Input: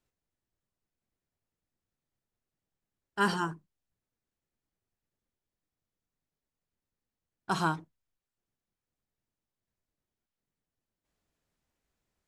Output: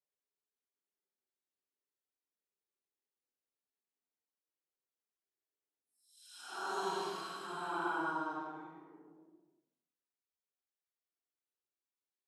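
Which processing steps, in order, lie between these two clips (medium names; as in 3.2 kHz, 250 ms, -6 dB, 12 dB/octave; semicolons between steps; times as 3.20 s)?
high-pass 270 Hz 24 dB/octave; peaking EQ 400 Hz +7.5 dB 0.22 oct; phase dispersion lows, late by 80 ms, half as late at 2.9 kHz; Paulstretch 7.7×, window 0.10 s, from 6.70 s; trim -9 dB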